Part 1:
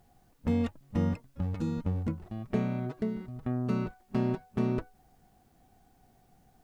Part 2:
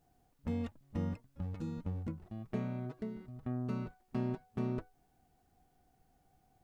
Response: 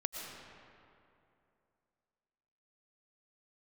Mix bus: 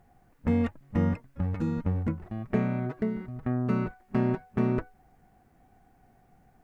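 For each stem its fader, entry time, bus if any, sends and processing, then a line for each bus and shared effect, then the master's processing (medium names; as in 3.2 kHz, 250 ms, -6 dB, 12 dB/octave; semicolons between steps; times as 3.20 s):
+2.0 dB, 0.00 s, no send, resonant high shelf 2.7 kHz -7.5 dB, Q 1.5
-11.0 dB, 0.00 s, no send, peaking EQ 1.7 kHz +15 dB 1.5 oct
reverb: none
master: none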